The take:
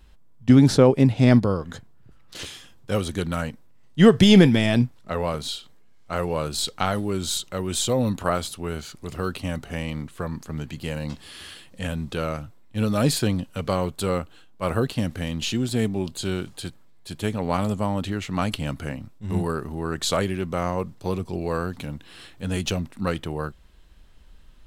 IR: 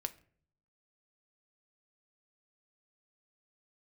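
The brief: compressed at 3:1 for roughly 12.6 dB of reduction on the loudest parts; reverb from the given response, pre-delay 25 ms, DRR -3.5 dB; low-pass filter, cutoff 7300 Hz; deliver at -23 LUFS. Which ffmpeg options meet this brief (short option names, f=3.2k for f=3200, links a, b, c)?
-filter_complex "[0:a]lowpass=7.3k,acompressor=threshold=-27dB:ratio=3,asplit=2[a][b];[1:a]atrim=start_sample=2205,adelay=25[c];[b][c]afir=irnorm=-1:irlink=0,volume=4.5dB[d];[a][d]amix=inputs=2:normalize=0,volume=3.5dB"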